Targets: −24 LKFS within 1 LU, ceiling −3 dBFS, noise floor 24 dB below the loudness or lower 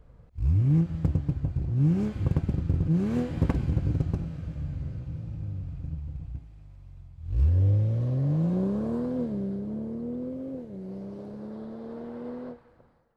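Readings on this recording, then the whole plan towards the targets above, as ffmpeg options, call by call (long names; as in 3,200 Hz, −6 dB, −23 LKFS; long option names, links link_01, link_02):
integrated loudness −28.5 LKFS; sample peak −14.5 dBFS; target loudness −24.0 LKFS
→ -af "volume=4.5dB"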